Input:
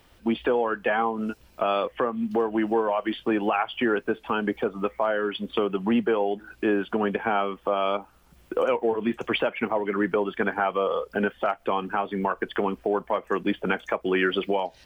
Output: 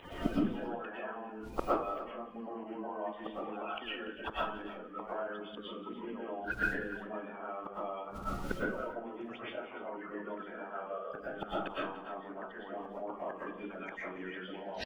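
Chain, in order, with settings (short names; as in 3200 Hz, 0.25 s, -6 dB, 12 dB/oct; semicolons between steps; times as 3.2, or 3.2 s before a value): bin magnitudes rounded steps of 30 dB; LPF 2600 Hz 6 dB/oct; low shelf 110 Hz -2 dB; notches 50/100/150/200/250 Hz; reverse; upward compressor, threshold -34 dBFS; reverse; limiter -17.5 dBFS, peak gain reduction 4.5 dB; flipped gate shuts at -30 dBFS, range -33 dB; pump 91 bpm, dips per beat 2, -14 dB, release 86 ms; on a send: tapped delay 0.182/0.289 s -17.5/-15 dB; on the sum: digital reverb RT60 0.43 s, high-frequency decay 0.65×, pre-delay 80 ms, DRR -8 dB; gain +11.5 dB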